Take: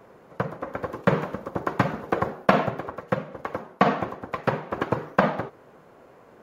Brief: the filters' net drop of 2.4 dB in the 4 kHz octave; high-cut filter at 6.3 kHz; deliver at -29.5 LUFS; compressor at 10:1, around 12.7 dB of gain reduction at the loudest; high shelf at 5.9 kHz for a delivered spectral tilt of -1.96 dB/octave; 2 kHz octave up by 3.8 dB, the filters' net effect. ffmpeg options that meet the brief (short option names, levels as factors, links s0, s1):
-af "lowpass=6300,equalizer=f=2000:t=o:g=6.5,equalizer=f=4000:t=o:g=-5,highshelf=f=5900:g=-5,acompressor=threshold=0.0447:ratio=10,volume=1.88"